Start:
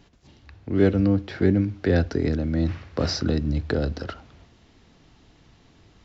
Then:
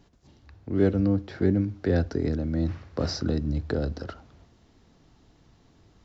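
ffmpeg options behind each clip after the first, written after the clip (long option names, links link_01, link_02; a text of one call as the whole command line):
ffmpeg -i in.wav -af "equalizer=frequency=2600:width=0.98:gain=-6,volume=-3dB" out.wav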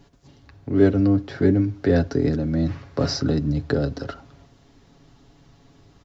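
ffmpeg -i in.wav -af "aecho=1:1:7.2:0.52,volume=4.5dB" out.wav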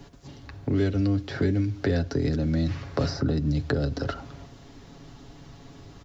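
ffmpeg -i in.wav -filter_complex "[0:a]acrossover=split=110|2200[link_01][link_02][link_03];[link_01]acompressor=threshold=-35dB:ratio=4[link_04];[link_02]acompressor=threshold=-33dB:ratio=4[link_05];[link_03]acompressor=threshold=-47dB:ratio=4[link_06];[link_04][link_05][link_06]amix=inputs=3:normalize=0,volume=6.5dB" out.wav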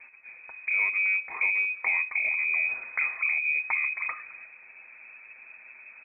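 ffmpeg -i in.wav -af "lowpass=frequency=2200:width_type=q:width=0.5098,lowpass=frequency=2200:width_type=q:width=0.6013,lowpass=frequency=2200:width_type=q:width=0.9,lowpass=frequency=2200:width_type=q:width=2.563,afreqshift=-2600,volume=-2.5dB" out.wav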